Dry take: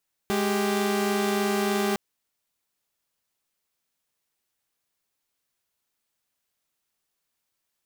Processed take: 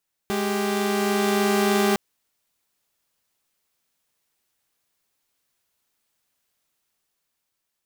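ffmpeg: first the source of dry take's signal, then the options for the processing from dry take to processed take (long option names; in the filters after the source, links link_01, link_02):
-f lavfi -i "aevalsrc='0.0708*((2*mod(207.65*t,1)-1)+(2*mod(392*t,1)-1))':duration=1.66:sample_rate=44100"
-af "dynaudnorm=framelen=260:gausssize=9:maxgain=5dB"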